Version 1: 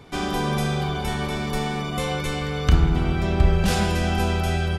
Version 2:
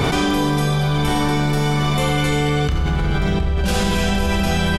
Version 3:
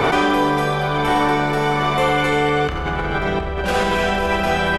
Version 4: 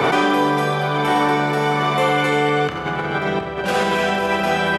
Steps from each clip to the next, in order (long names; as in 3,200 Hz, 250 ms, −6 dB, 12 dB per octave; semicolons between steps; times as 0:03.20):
slap from a distant wall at 130 metres, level −9 dB; four-comb reverb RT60 1.2 s, combs from 30 ms, DRR 0.5 dB; envelope flattener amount 100%; level −8 dB
three-way crossover with the lows and the highs turned down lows −14 dB, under 350 Hz, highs −13 dB, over 2,500 Hz; level +6 dB
high-pass filter 110 Hz 24 dB per octave